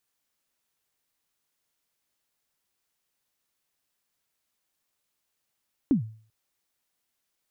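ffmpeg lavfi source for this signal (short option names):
-f lavfi -i "aevalsrc='0.178*pow(10,-3*t/0.45)*sin(2*PI*(310*0.114/log(110/310)*(exp(log(110/310)*min(t,0.114)/0.114)-1)+110*max(t-0.114,0)))':d=0.39:s=44100"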